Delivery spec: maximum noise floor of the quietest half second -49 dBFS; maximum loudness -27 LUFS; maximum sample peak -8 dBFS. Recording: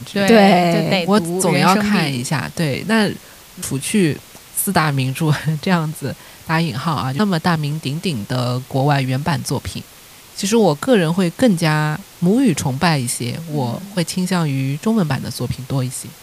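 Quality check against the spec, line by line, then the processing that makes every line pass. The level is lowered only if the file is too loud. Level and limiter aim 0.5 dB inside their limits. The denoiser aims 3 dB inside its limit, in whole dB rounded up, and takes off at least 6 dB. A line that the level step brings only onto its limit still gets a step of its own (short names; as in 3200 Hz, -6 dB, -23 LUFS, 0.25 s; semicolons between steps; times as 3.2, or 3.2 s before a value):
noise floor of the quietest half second -42 dBFS: fail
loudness -18.0 LUFS: fail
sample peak -1.5 dBFS: fail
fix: gain -9.5 dB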